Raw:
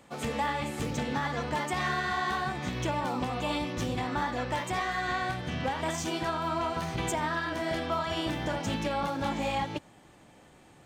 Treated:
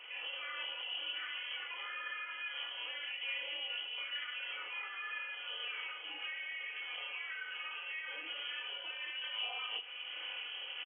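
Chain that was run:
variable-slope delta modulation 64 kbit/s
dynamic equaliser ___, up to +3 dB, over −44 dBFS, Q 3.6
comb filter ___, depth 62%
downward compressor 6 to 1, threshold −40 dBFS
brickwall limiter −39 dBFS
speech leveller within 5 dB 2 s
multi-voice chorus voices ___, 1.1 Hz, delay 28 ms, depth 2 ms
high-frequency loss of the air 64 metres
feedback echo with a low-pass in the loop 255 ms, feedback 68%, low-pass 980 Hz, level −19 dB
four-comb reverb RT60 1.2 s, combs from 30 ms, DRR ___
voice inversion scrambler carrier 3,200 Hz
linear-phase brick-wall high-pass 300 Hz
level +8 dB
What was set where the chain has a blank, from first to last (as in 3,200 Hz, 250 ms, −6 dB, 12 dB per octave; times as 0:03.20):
1,400 Hz, 4.1 ms, 4, 13 dB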